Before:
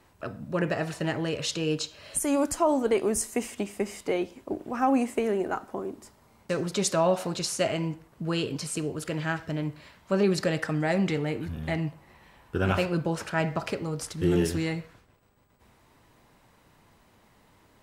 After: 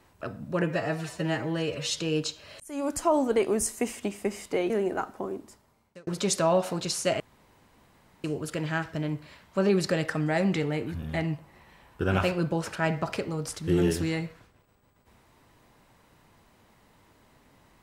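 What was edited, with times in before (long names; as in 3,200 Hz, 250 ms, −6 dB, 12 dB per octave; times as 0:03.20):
0:00.63–0:01.53: time-stretch 1.5×
0:02.15–0:02.59: fade in
0:04.25–0:05.24: remove
0:05.85–0:06.61: fade out
0:07.74–0:08.78: fill with room tone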